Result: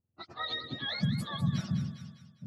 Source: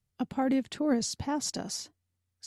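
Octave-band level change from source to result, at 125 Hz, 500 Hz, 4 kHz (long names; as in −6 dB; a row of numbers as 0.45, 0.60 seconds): +13.5, −14.0, +2.5 decibels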